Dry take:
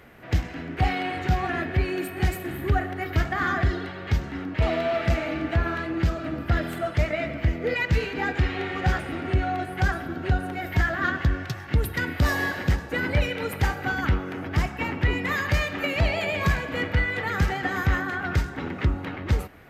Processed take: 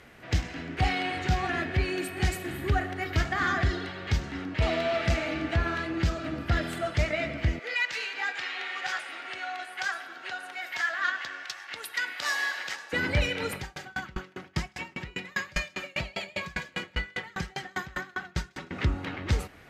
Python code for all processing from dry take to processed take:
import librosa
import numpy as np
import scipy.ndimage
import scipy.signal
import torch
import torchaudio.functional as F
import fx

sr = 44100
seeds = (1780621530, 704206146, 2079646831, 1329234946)

y = fx.chain(x, sr, fx.highpass(hz=950.0, slope=12),
    fx.high_shelf(hz=8200.0, db=-3.5), at=(7.59, 12.93))
y = fx.chain(y, sr, fx.comb(ms=5.4, depth=0.58),
    fx.echo_wet_highpass(ms=157, feedback_pct=47, hz=1900.0, wet_db=-6.5),
    fx.tremolo_decay(direction='decaying', hz=5.0, depth_db=32), at=(13.56, 18.71))
y = scipy.signal.sosfilt(scipy.signal.butter(2, 8000.0, 'lowpass', fs=sr, output='sos'), y)
y = fx.high_shelf(y, sr, hz=3100.0, db=11.0)
y = F.gain(torch.from_numpy(y), -3.5).numpy()